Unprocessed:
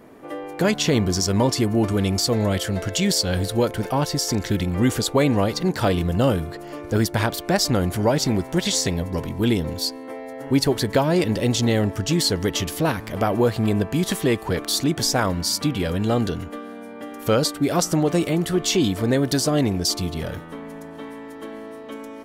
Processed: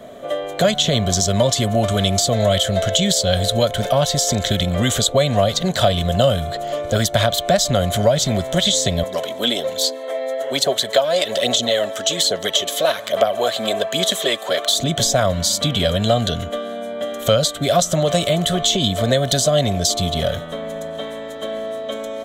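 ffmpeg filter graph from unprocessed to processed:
-filter_complex "[0:a]asettb=1/sr,asplit=3[a][b][c];[a]atrim=end=9.034[d];[b]atrim=start=9.03:end=14.79,asetpts=PTS-STARTPTS,afade=t=in:d=0.004:c=qsin,afade=t=out:st=5.756:d=0.004:c=qsin,highpass=410,aphaser=in_gain=1:out_gain=1:delay=3.9:decay=0.42:speed=1.2:type=sinusoidal[e];[c]atrim=start=14.786[f];[d][e]acrossfade=d=0.004:c1=hsin:c2=qsin[g];[g][f]acrossfade=d=0.004:c1=qsin:c2=hsin,superequalizer=6b=0.447:8b=3.55:9b=0.562:13b=3.55:15b=2.24,acrossover=split=170|670[h][i][j];[h]acompressor=threshold=-25dB:ratio=4[k];[i]acompressor=threshold=-29dB:ratio=4[l];[j]acompressor=threshold=-22dB:ratio=4[m];[k][l][m]amix=inputs=3:normalize=0,volume=5.5dB"

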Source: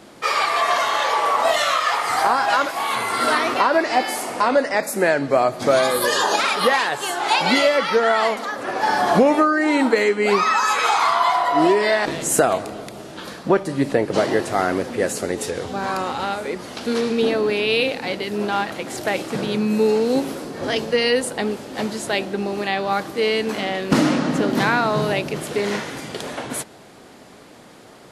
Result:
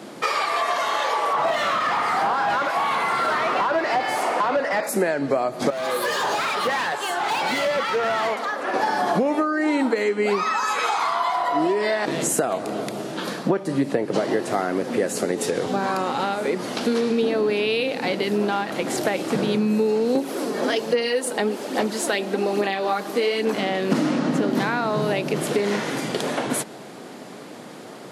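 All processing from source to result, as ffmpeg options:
-filter_complex "[0:a]asettb=1/sr,asplit=3[a][b][c];[a]atrim=end=1.334[d];[b]atrim=start=1.33:end=4.89,asetpts=PTS-STARTPTS,afade=t=in:d=0.004:c=qsin,afade=t=out:st=3.556:d=0.004:c=qsin,highpass=f=750:p=1,asplit=2[e][f];[f]highpass=f=720:p=1,volume=21dB,asoftclip=type=tanh:threshold=-6.5dB[g];[e][g]amix=inputs=2:normalize=0,lowpass=f=1k:p=1,volume=-6dB[h];[c]atrim=start=4.886[i];[d][h]acrossfade=d=0.004:c1=hsin:c2=qsin[j];[j][i]acrossfade=d=0.004:c1=qsin:c2=hsin,asettb=1/sr,asplit=3[k][l][m];[k]atrim=end=5.704[n];[l]atrim=start=5.7:end=8.74,asetpts=PTS-STARTPTS,afade=t=in:d=0.004:c=qsin,afade=t=out:st=3.036:d=0.004:c=qsin,highpass=f=780:p=1,asoftclip=type=hard:threshold=-23dB,highshelf=f=3.8k:g=-9[o];[m]atrim=start=8.736[p];[n][o]acrossfade=d=0.004:c1=hsin:c2=qsin[q];[q][p]acrossfade=d=0.004:c1=qsin:c2=hsin,asettb=1/sr,asplit=3[r][s][t];[r]atrim=end=20.154[u];[s]atrim=start=20.15:end=23.54,asetpts=PTS-STARTPTS,afade=t=in:d=0.004:c=qsin,afade=t=out:st=3.386:d=0.004:c=qsin,highpass=250,highshelf=f=10k:g=4,aphaser=in_gain=1:out_gain=1:delay=4.9:decay=0.42:speed=1.2:type=sinusoidal[v];[t]atrim=start=23.536[w];[u][v]acrossfade=d=0.004:c1=hsin:c2=qsin[x];[x][w]acrossfade=d=0.004:c1=qsin:c2=hsin,acompressor=threshold=-25dB:ratio=6,highpass=f=130:w=0.5412,highpass=f=130:w=1.3066,equalizer=f=270:w=0.36:g=3.5,volume=3.5dB"

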